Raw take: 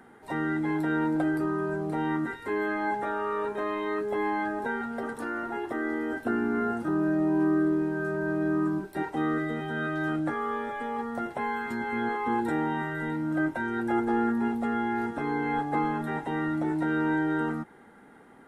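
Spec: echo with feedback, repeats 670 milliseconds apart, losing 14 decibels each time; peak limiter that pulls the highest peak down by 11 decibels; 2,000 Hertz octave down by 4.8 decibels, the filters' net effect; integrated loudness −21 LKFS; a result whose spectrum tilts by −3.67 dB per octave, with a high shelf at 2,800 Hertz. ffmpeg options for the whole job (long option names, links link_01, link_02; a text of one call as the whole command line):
ffmpeg -i in.wav -af "equalizer=frequency=2000:width_type=o:gain=-8,highshelf=frequency=2800:gain=4,alimiter=level_in=3dB:limit=-24dB:level=0:latency=1,volume=-3dB,aecho=1:1:670|1340:0.2|0.0399,volume=13.5dB" out.wav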